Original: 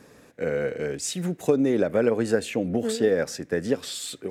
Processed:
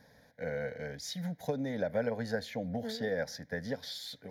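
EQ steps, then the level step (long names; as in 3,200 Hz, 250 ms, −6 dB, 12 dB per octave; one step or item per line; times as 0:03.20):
phaser with its sweep stopped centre 1,800 Hz, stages 8
−5.0 dB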